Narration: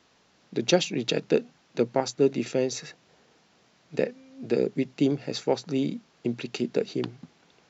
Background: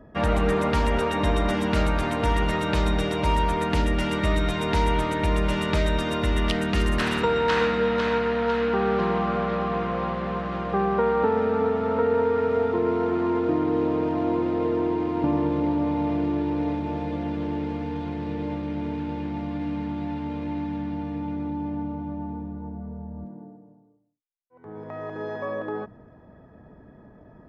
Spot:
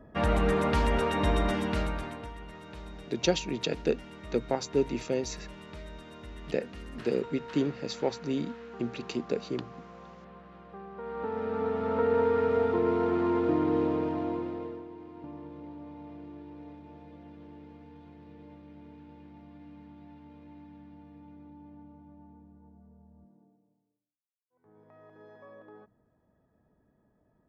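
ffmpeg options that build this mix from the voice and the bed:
ffmpeg -i stem1.wav -i stem2.wav -filter_complex "[0:a]adelay=2550,volume=-4.5dB[link_01];[1:a]volume=15dB,afade=type=out:start_time=1.4:duration=0.91:silence=0.125893,afade=type=in:start_time=10.95:duration=1.25:silence=0.11885,afade=type=out:start_time=13.75:duration=1.1:silence=0.133352[link_02];[link_01][link_02]amix=inputs=2:normalize=0" out.wav

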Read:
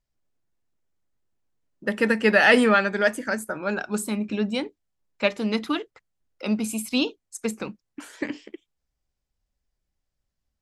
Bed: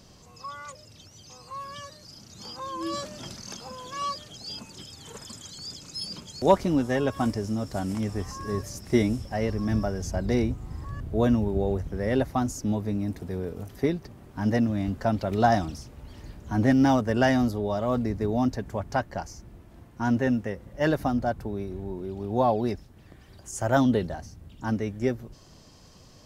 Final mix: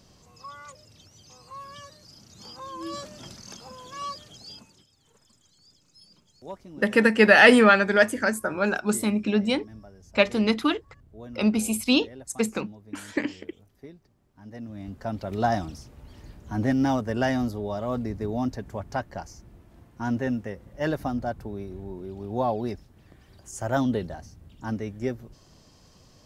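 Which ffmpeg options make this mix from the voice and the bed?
ffmpeg -i stem1.wav -i stem2.wav -filter_complex "[0:a]adelay=4950,volume=2.5dB[link_01];[1:a]volume=13.5dB,afade=type=out:start_time=4.36:duration=0.5:silence=0.149624,afade=type=in:start_time=14.5:duration=0.95:silence=0.141254[link_02];[link_01][link_02]amix=inputs=2:normalize=0" out.wav

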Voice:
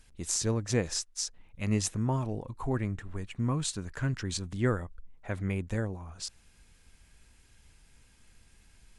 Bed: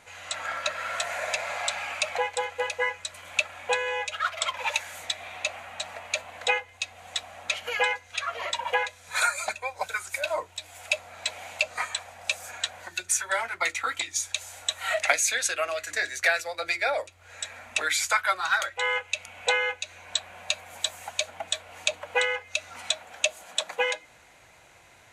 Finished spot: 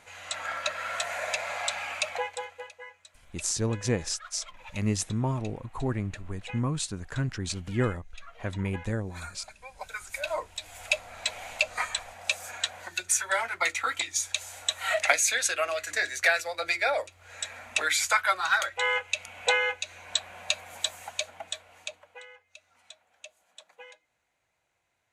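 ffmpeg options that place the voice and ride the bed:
ffmpeg -i stem1.wav -i stem2.wav -filter_complex "[0:a]adelay=3150,volume=1dB[link_01];[1:a]volume=17dB,afade=type=out:start_time=1.97:duration=0.76:silence=0.141254,afade=type=in:start_time=9.55:duration=1.1:silence=0.11885,afade=type=out:start_time=20.65:duration=1.52:silence=0.0749894[link_02];[link_01][link_02]amix=inputs=2:normalize=0" out.wav

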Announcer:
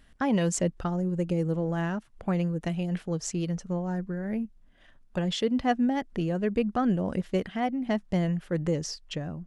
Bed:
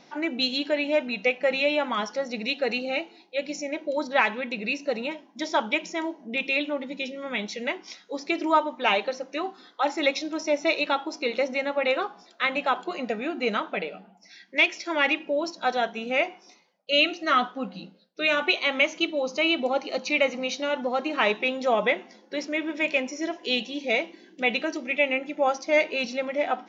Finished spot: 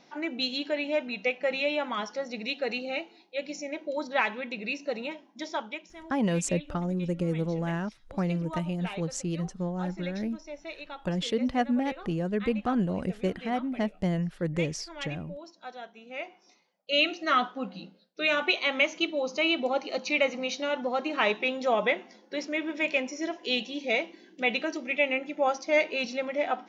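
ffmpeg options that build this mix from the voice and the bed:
ffmpeg -i stem1.wav -i stem2.wav -filter_complex "[0:a]adelay=5900,volume=-1.5dB[link_01];[1:a]volume=10dB,afade=type=out:start_time=5.29:duration=0.58:silence=0.237137,afade=type=in:start_time=16.06:duration=1.05:silence=0.188365[link_02];[link_01][link_02]amix=inputs=2:normalize=0" out.wav

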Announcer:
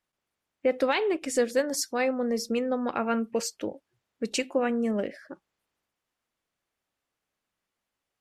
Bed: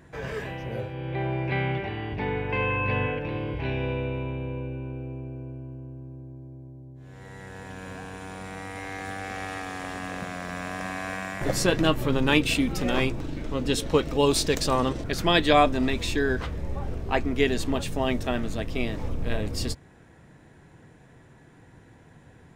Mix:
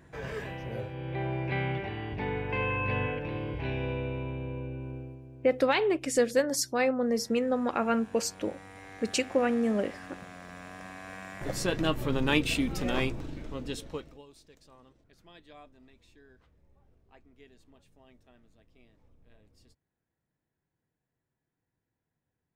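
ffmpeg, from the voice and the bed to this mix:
ffmpeg -i stem1.wav -i stem2.wav -filter_complex "[0:a]adelay=4800,volume=0dB[link_01];[1:a]volume=3dB,afade=type=out:start_time=4.95:duration=0.25:silence=0.421697,afade=type=in:start_time=11.03:duration=1.16:silence=0.446684,afade=type=out:start_time=13.04:duration=1.2:silence=0.0354813[link_02];[link_01][link_02]amix=inputs=2:normalize=0" out.wav

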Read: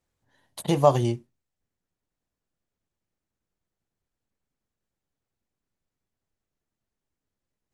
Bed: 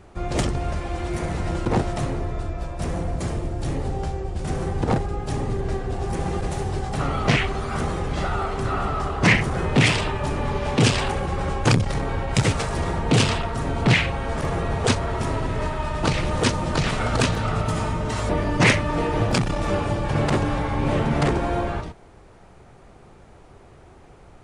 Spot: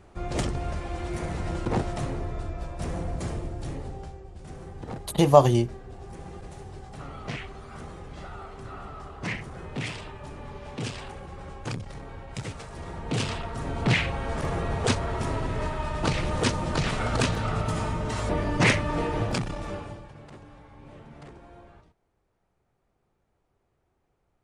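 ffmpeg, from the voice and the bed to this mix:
ffmpeg -i stem1.wav -i stem2.wav -filter_complex "[0:a]adelay=4500,volume=3dB[link_01];[1:a]volume=6.5dB,afade=type=out:start_time=3.29:duration=0.92:silence=0.298538,afade=type=in:start_time=12.71:duration=1.46:silence=0.266073,afade=type=out:start_time=18.98:duration=1.16:silence=0.0841395[link_02];[link_01][link_02]amix=inputs=2:normalize=0" out.wav

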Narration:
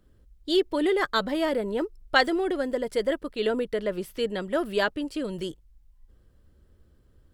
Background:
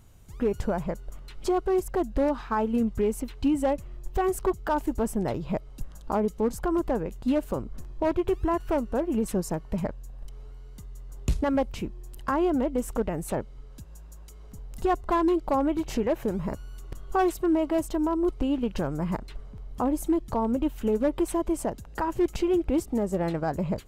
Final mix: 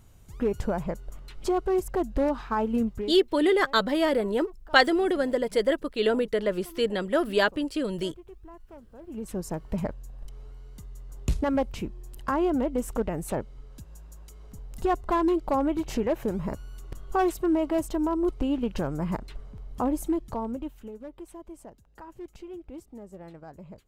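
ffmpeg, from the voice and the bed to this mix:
ffmpeg -i stem1.wav -i stem2.wav -filter_complex "[0:a]adelay=2600,volume=2dB[link_01];[1:a]volume=21dB,afade=type=out:start_time=2.81:duration=0.37:silence=0.0841395,afade=type=in:start_time=8.98:duration=0.73:silence=0.0841395,afade=type=out:start_time=19.9:duration=1.02:silence=0.149624[link_02];[link_01][link_02]amix=inputs=2:normalize=0" out.wav

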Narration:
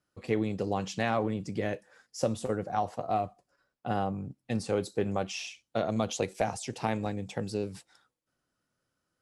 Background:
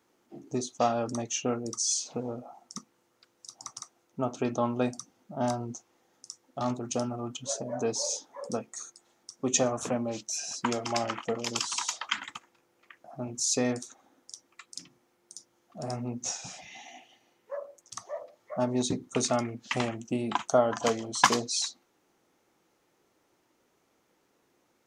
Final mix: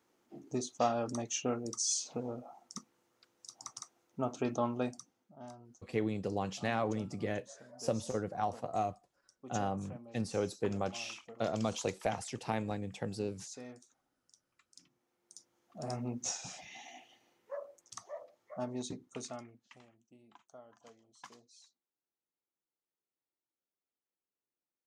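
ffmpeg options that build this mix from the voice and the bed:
ffmpeg -i stem1.wav -i stem2.wav -filter_complex "[0:a]adelay=5650,volume=-4.5dB[link_01];[1:a]volume=12.5dB,afade=type=out:start_time=4.61:duration=0.79:silence=0.158489,afade=type=in:start_time=14.66:duration=1.39:silence=0.141254,afade=type=out:start_time=17.13:duration=2.67:silence=0.0398107[link_02];[link_01][link_02]amix=inputs=2:normalize=0" out.wav

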